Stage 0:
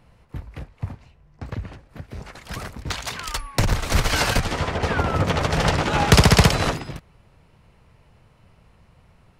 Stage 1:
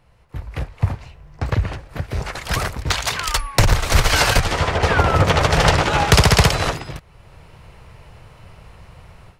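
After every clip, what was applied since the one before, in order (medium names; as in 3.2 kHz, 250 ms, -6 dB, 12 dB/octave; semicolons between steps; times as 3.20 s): peaking EQ 230 Hz -7.5 dB 0.94 oct; level rider gain up to 13.5 dB; trim -1 dB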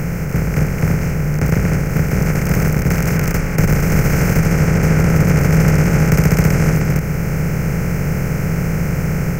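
spectral levelling over time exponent 0.2; FFT filter 110 Hz 0 dB, 160 Hz +13 dB, 600 Hz -2 dB, 900 Hz -10 dB, 1.4 kHz -6 dB, 2.3 kHz -1 dB, 3.6 kHz -28 dB, 6.2 kHz -2 dB, 10 kHz -9 dB, 15 kHz +10 dB; trim -8 dB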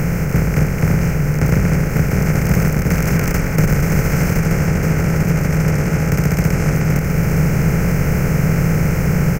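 gain riding 0.5 s; delay 926 ms -8.5 dB; trim -1 dB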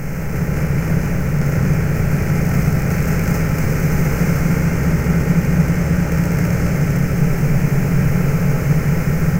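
reverberation RT60 1.7 s, pre-delay 4 ms, DRR -1.5 dB; bit-crushed delay 213 ms, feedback 80%, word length 6-bit, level -7 dB; trim -7.5 dB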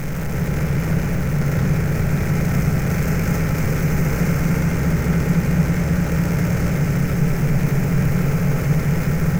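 jump at every zero crossing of -26 dBFS; trim -3.5 dB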